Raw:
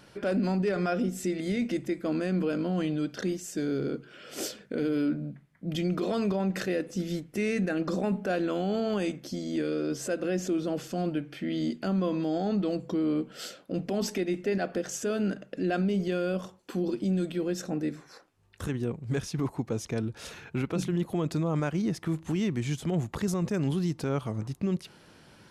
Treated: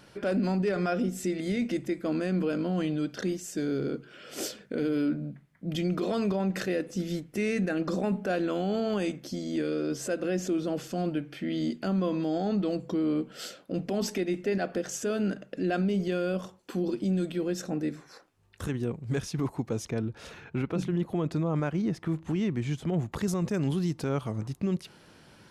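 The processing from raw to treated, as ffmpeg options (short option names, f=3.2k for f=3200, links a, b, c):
-filter_complex "[0:a]asettb=1/sr,asplit=3[a][b][c];[a]atrim=end=19.904[d];[b]atrim=start=19.9:end=23.12,asetpts=PTS-STARTPTS,afade=t=in:d=0.004:c=qsin,afade=t=out:st=3.216:d=0.004:c=qsin,highshelf=f=4.5k:g=-10.5[e];[c]atrim=start=23.116[f];[d][e]acrossfade=d=0.004:c1=hsin:c2=qsin[g];[g][f]acrossfade=d=0.004:c1=qsin:c2=hsin"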